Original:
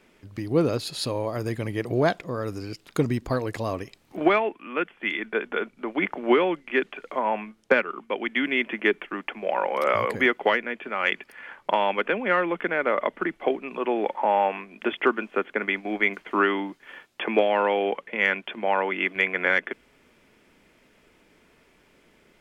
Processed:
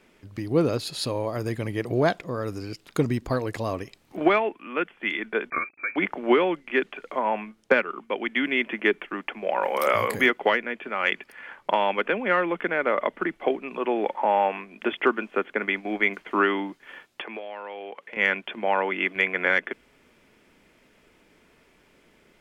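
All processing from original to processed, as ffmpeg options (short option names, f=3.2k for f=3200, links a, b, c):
-filter_complex "[0:a]asettb=1/sr,asplit=3[a][b][c];[a]atrim=end=5.504[d];[b]atrim=start=5.5:end=5.96,asetpts=PTS-STARTPTS,afade=t=in:d=0.004:c=qsin,afade=t=out:st=0.456:d=0.004:c=qsin,aecho=1:1:0.9:0.82,atrim=end_sample=20286,aeval=exprs='val(0)*gte(abs(val(0)),0.00282)':c=same,lowpass=f=2.2k:t=q:w=0.5098,lowpass=f=2.2k:t=q:w=0.6013,lowpass=f=2.2k:t=q:w=0.9,lowpass=f=2.2k:t=q:w=2.563,afreqshift=-2600[e];[c]atrim=start=5.956[f];[d][e]acrossfade=d=0.004:c1=hsin:c2=qsin[g];[g][f]acrossfade=d=0.004:c1=qsin:c2=hsin,asettb=1/sr,asplit=3[h][i][j];[h]atrim=end=9.634[k];[i]atrim=start=9.63:end=10.3,asetpts=PTS-STARTPTS,afade=t=in:d=0.004:c=qsin,afade=t=out:st=0.666:d=0.004:c=qsin,aemphasis=mode=production:type=50fm,acompressor=mode=upward:threshold=-26dB:ratio=2.5:attack=3.2:release=140:knee=2.83:detection=peak,asplit=2[l][m];[m]adelay=28,volume=-10dB[n];[l][n]amix=inputs=2:normalize=0,atrim=end_sample=29547[o];[j]atrim=start=10.296[p];[k][o]acrossfade=d=0.004:c1=hsin:c2=qsin[q];[q][p]acrossfade=d=0.004:c1=qsin:c2=hsin,asettb=1/sr,asplit=3[r][s][t];[r]atrim=end=17.214[u];[s]atrim=start=17.21:end=18.17,asetpts=PTS-STARTPTS,afade=t=in:d=0.004:c=qsin,afade=t=out:st=0.956:d=0.004:c=qsin,highpass=f=380:p=1,acompressor=threshold=-35dB:ratio=4:attack=3.2:release=140:knee=1:detection=peak[v];[t]atrim=start=18.166[w];[u][v]acrossfade=d=0.004:c1=hsin:c2=qsin[x];[x][w]acrossfade=d=0.004:c1=qsin:c2=hsin"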